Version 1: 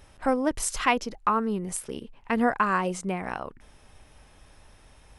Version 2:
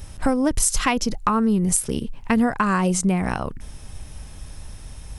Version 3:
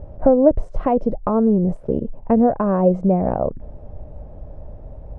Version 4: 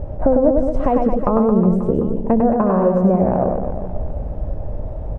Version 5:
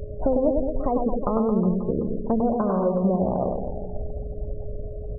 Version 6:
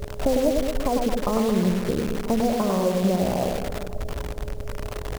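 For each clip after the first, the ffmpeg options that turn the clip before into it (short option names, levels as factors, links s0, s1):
-af "bass=f=250:g=12,treble=f=4000:g=10,acompressor=threshold=0.0794:ratio=6,volume=2"
-af "lowpass=f=600:t=q:w=4.3,volume=1.19"
-af "acompressor=threshold=0.0501:ratio=2.5,aecho=1:1:100|220|364|536.8|744.2:0.631|0.398|0.251|0.158|0.1,volume=2.66"
-af "afftfilt=real='re*gte(hypot(re,im),0.0501)':imag='im*gte(hypot(re,im),0.0501)':win_size=1024:overlap=0.75,aeval=exprs='val(0)+0.0251*sin(2*PI*420*n/s)':c=same,volume=0.447"
-af "acrusher=bits=6:dc=4:mix=0:aa=0.000001"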